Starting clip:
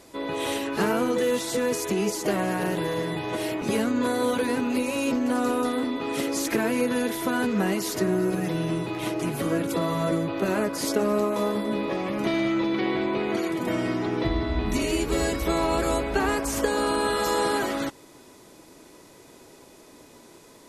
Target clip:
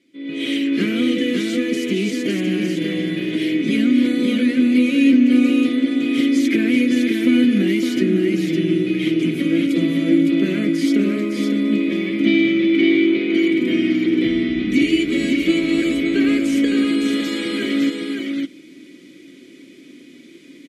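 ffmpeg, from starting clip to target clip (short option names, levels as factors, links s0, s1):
-filter_complex "[0:a]asplit=3[s0][s1][s2];[s0]bandpass=f=270:t=q:w=8,volume=1[s3];[s1]bandpass=f=2290:t=q:w=8,volume=0.501[s4];[s2]bandpass=f=3010:t=q:w=8,volume=0.355[s5];[s3][s4][s5]amix=inputs=3:normalize=0,highshelf=f=7800:g=8,aecho=1:1:5.7:0.39,asplit=2[s6][s7];[s7]aecho=0:1:560:0.596[s8];[s6][s8]amix=inputs=2:normalize=0,dynaudnorm=f=120:g=5:m=5.96,volume=1.26"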